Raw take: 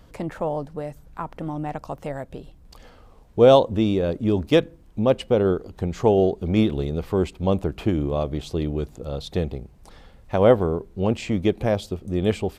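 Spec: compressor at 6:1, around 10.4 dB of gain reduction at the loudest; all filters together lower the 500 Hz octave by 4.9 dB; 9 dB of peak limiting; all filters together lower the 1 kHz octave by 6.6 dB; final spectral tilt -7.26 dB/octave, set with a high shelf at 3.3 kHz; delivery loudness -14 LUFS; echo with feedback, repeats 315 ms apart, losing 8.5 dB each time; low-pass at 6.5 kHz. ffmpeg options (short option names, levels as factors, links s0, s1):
-af "lowpass=6500,equalizer=f=500:t=o:g=-4,equalizer=f=1000:t=o:g=-7,highshelf=f=3300:g=-6.5,acompressor=threshold=0.0562:ratio=6,alimiter=level_in=1.06:limit=0.0631:level=0:latency=1,volume=0.944,aecho=1:1:315|630|945|1260:0.376|0.143|0.0543|0.0206,volume=10.6"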